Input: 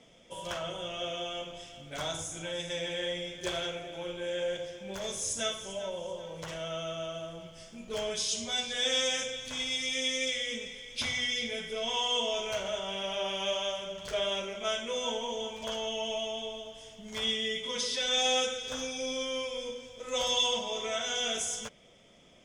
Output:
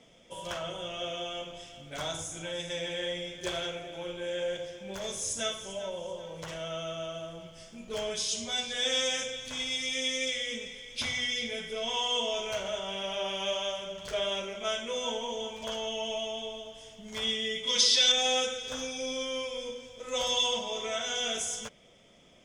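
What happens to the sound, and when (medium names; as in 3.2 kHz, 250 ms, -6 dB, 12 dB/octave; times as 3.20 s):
17.67–18.12 s: peaking EQ 4.6 kHz +12 dB 1.7 oct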